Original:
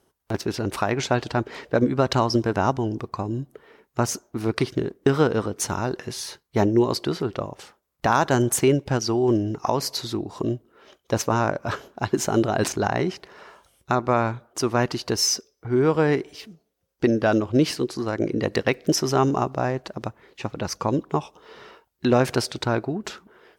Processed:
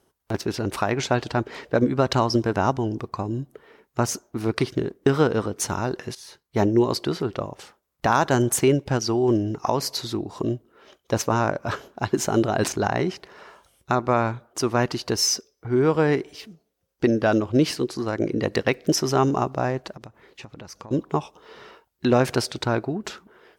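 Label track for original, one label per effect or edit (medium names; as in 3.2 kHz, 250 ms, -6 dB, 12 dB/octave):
6.150000	6.650000	fade in, from -15.5 dB
19.910000	20.910000	compression 16:1, threshold -36 dBFS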